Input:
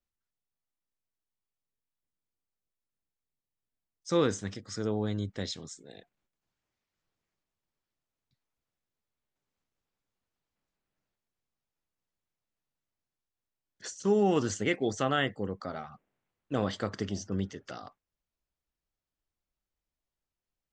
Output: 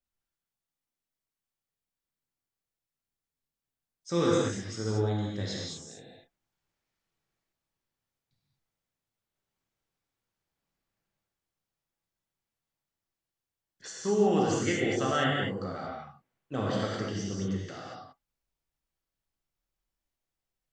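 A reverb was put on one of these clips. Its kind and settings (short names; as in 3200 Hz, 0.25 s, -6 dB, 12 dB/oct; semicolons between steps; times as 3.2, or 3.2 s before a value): non-linear reverb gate 0.26 s flat, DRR -4.5 dB; gain -4 dB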